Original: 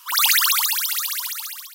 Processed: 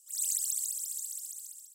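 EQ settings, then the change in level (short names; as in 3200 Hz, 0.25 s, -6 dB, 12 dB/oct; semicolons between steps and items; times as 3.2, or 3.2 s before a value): band-pass 7800 Hz, Q 8.8; differentiator; 0.0 dB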